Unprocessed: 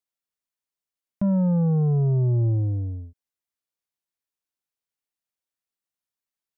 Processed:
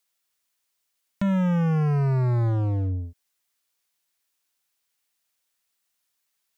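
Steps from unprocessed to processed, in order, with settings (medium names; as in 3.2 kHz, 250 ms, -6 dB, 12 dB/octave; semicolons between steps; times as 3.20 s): in parallel at -3 dB: wavefolder -29 dBFS; on the sum: tape noise reduction on one side only encoder only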